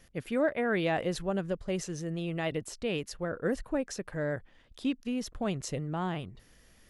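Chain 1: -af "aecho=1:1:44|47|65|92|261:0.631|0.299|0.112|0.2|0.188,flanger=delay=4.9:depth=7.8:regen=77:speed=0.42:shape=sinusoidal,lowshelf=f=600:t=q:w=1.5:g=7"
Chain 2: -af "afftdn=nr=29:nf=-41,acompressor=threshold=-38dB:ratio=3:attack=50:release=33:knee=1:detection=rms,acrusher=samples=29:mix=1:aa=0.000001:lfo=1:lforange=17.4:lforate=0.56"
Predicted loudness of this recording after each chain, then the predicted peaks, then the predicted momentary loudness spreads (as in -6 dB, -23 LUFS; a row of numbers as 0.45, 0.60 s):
-29.5, -37.5 LUFS; -13.0, -25.0 dBFS; 6, 5 LU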